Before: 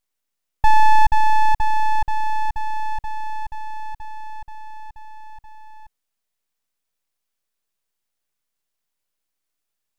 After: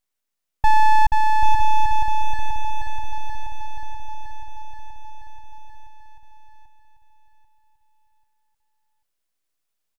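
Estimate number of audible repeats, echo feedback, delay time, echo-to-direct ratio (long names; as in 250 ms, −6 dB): 4, 34%, 790 ms, −4.5 dB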